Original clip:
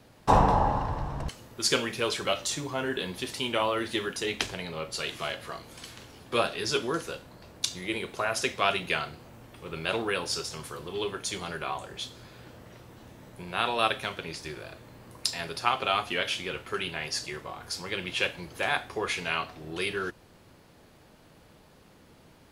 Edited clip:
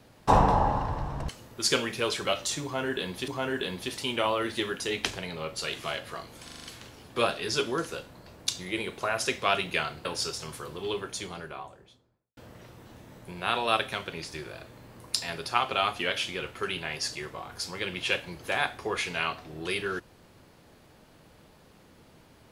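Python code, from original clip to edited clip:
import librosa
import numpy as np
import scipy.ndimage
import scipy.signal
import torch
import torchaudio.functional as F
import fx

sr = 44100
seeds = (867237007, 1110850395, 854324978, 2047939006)

y = fx.studio_fade_out(x, sr, start_s=10.93, length_s=1.55)
y = fx.edit(y, sr, fx.repeat(start_s=2.64, length_s=0.64, count=2),
    fx.stutter(start_s=5.8, slice_s=0.04, count=6),
    fx.cut(start_s=9.21, length_s=0.95), tone=tone)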